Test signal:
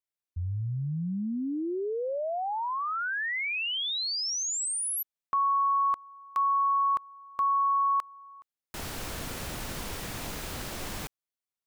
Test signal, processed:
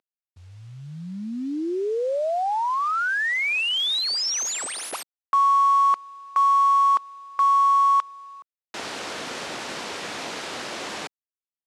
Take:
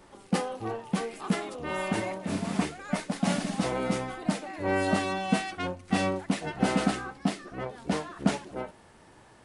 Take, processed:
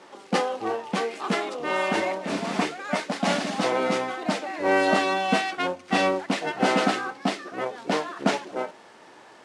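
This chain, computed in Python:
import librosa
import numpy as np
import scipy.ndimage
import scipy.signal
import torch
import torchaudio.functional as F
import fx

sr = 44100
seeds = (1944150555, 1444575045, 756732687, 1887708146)

y = fx.cvsd(x, sr, bps=64000)
y = fx.bandpass_edges(y, sr, low_hz=320.0, high_hz=5800.0)
y = y * librosa.db_to_amplitude(7.5)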